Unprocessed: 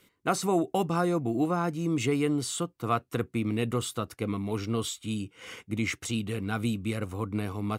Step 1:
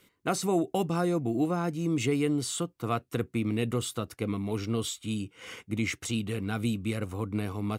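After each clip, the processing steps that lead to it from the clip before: dynamic EQ 1100 Hz, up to -5 dB, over -40 dBFS, Q 1.2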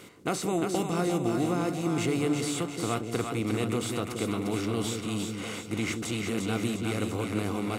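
per-bin compression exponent 0.6; split-band echo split 500 Hz, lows 0.175 s, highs 0.351 s, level -4.5 dB; gain -4 dB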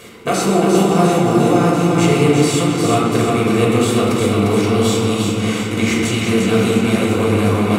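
reverb RT60 2.7 s, pre-delay 4 ms, DRR -4.5 dB; gain +7.5 dB

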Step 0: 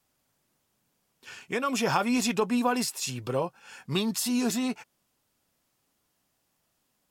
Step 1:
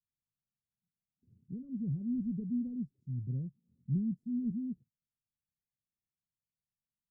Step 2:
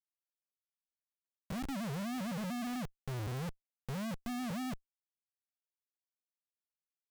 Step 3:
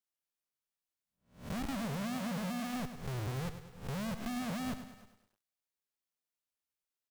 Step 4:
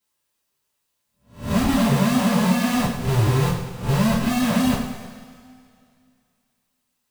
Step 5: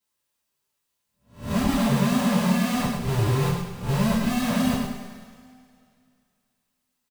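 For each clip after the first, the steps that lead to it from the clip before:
spectral noise reduction 20 dB; inverse Chebyshev low-pass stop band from 870 Hz, stop band 70 dB; gain +2 dB
Schmitt trigger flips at -47.5 dBFS; gain +1.5 dB
spectral swells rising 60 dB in 0.39 s; echo 0.316 s -22 dB; lo-fi delay 0.102 s, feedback 55%, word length 11-bit, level -10.5 dB
two-slope reverb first 0.38 s, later 2.5 s, from -20 dB, DRR -9.5 dB; gain +7.5 dB
echo 0.107 s -7 dB; gain -4 dB

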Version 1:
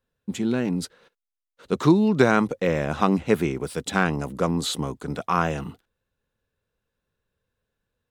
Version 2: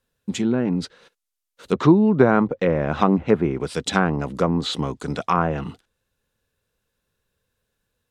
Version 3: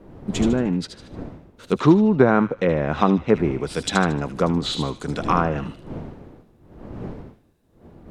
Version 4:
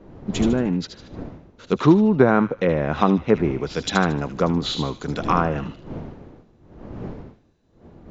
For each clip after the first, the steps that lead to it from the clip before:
treble ducked by the level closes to 1200 Hz, closed at -18.5 dBFS; high shelf 3500 Hz +8.5 dB; gain +3 dB
wind noise 310 Hz -36 dBFS; thin delay 76 ms, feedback 38%, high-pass 2200 Hz, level -6 dB
MP2 128 kbps 16000 Hz

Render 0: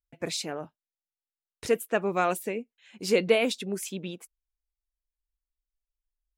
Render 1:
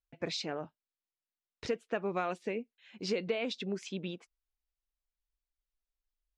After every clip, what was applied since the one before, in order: LPF 5400 Hz 24 dB/oct; compressor 6:1, threshold -27 dBFS, peak gain reduction 11 dB; gain -2.5 dB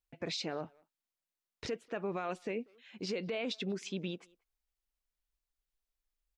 limiter -29 dBFS, peak gain reduction 8.5 dB; speakerphone echo 0.19 s, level -24 dB; gain +1 dB

